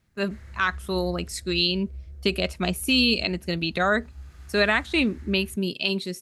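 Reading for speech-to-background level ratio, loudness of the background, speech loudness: 19.0 dB, -43.5 LUFS, -24.5 LUFS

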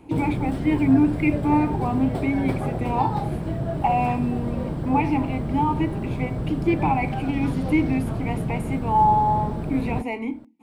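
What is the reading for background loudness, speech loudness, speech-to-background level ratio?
-28.0 LUFS, -24.5 LUFS, 3.5 dB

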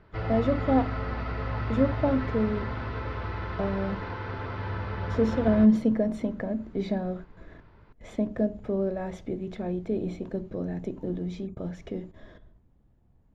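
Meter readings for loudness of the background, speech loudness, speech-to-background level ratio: -33.5 LUFS, -29.0 LUFS, 4.5 dB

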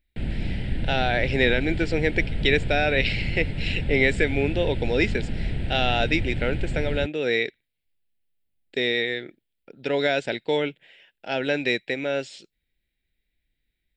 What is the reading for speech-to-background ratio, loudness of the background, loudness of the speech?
6.5 dB, -31.0 LUFS, -24.5 LUFS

